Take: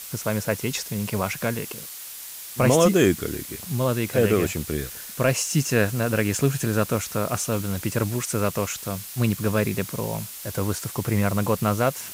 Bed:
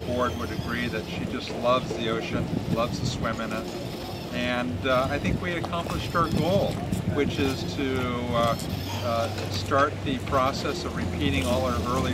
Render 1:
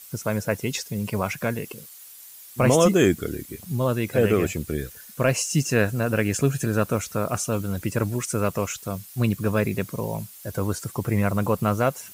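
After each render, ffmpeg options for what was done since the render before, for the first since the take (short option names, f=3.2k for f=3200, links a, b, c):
-af "afftdn=nr=11:nf=-38"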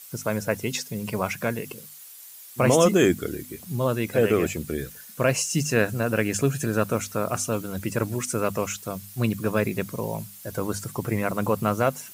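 -af "lowshelf=f=62:g=-10.5,bandreject=f=50:t=h:w=6,bandreject=f=100:t=h:w=6,bandreject=f=150:t=h:w=6,bandreject=f=200:t=h:w=6,bandreject=f=250:t=h:w=6"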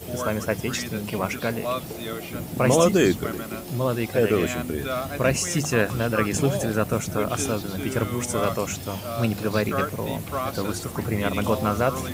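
-filter_complex "[1:a]volume=-5dB[a];[0:a][a]amix=inputs=2:normalize=0"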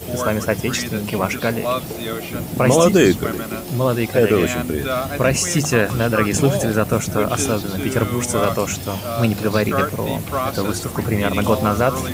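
-af "volume=6dB,alimiter=limit=-3dB:level=0:latency=1"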